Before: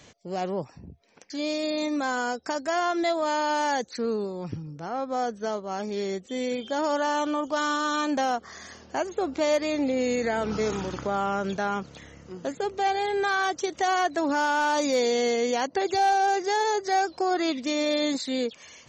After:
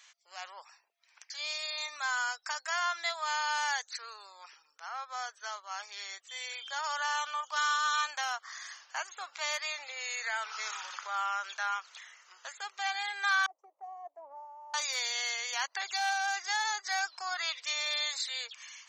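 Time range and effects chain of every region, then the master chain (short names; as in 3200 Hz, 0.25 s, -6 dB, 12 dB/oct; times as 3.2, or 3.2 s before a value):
13.46–14.74 inverse Chebyshev low-pass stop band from 1400 Hz + three-band expander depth 100%
whole clip: inverse Chebyshev high-pass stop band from 240 Hz, stop band 70 dB; AGC gain up to 3.5 dB; gain -3.5 dB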